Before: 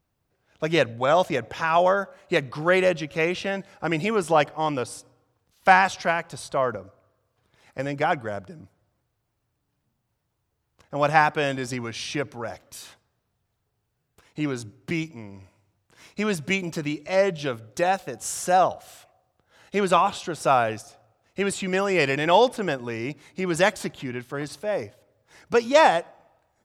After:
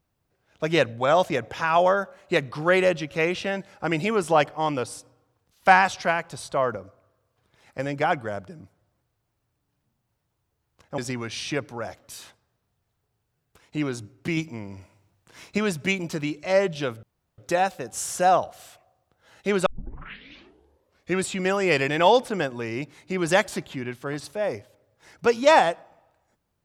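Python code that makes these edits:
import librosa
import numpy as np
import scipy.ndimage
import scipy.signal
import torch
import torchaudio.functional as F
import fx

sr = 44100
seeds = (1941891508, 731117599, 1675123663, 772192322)

y = fx.edit(x, sr, fx.cut(start_s=10.98, length_s=0.63),
    fx.clip_gain(start_s=15.0, length_s=1.21, db=4.0),
    fx.insert_room_tone(at_s=17.66, length_s=0.35),
    fx.tape_start(start_s=19.94, length_s=1.6), tone=tone)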